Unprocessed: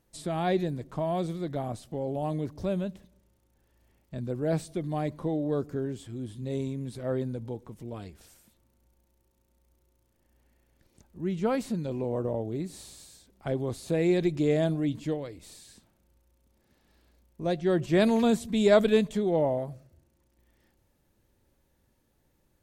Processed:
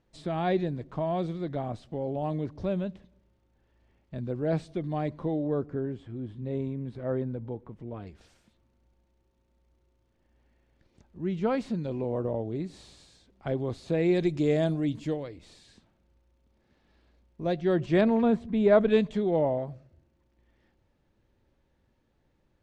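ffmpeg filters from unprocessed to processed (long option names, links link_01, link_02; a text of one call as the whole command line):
ffmpeg -i in.wav -af "asetnsamples=nb_out_samples=441:pad=0,asendcmd='5.47 lowpass f 2100;8.07 lowpass f 4300;14.15 lowpass f 7400;15.23 lowpass f 4300;18.01 lowpass f 1800;18.9 lowpass f 3900',lowpass=3900" out.wav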